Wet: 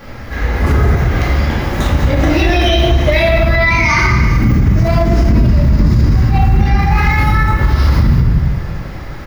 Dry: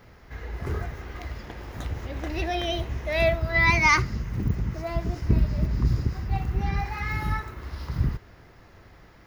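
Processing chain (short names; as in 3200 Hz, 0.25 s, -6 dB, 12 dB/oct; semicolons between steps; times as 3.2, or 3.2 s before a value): in parallel at -0.5 dB: negative-ratio compressor -24 dBFS; on the sum: echo 0.399 s -21.5 dB; shoebox room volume 350 m³, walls mixed, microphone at 2.3 m; maximiser +10.5 dB; lo-fi delay 0.202 s, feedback 35%, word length 7-bit, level -12 dB; gain -2.5 dB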